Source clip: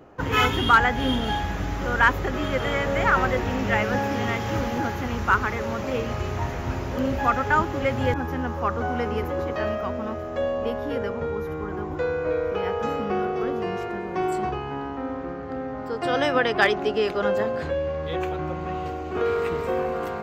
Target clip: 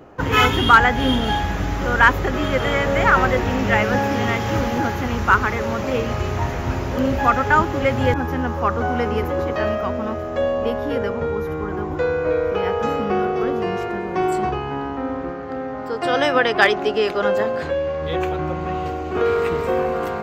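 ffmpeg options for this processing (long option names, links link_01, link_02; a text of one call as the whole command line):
ffmpeg -i in.wav -filter_complex "[0:a]asettb=1/sr,asplit=3[link_01][link_02][link_03];[link_01]atrim=end=15.304[link_04];[link_02]atrim=start=15.3:end=18.02,asetpts=PTS-STARTPTS,afade=type=in:duration=0.004:curve=qsin,afade=type=out:start_time=2.716:duration=0.004:curve=qsin,lowshelf=frequency=210:gain=-6.5[link_05];[link_03]atrim=start=18.016[link_06];[link_04][link_05]acrossfade=duration=0.004:curve1=hsin:curve2=qsin[link_07];[link_07][link_06]acrossfade=duration=0.004:curve1=qsin:curve2=hsin,volume=5dB" out.wav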